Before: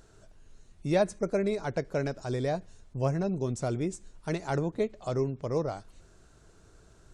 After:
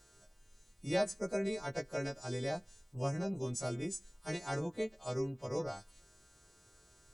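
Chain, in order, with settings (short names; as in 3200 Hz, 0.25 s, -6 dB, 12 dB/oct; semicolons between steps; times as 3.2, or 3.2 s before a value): frequency quantiser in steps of 2 st; requantised 12-bit, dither none; gain -6.5 dB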